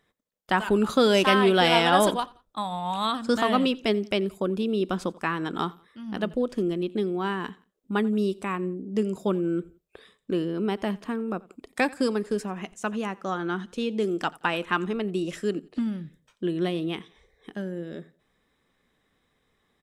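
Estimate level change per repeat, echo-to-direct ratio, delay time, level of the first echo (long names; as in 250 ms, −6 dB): −9.0 dB, −22.5 dB, 87 ms, −23.0 dB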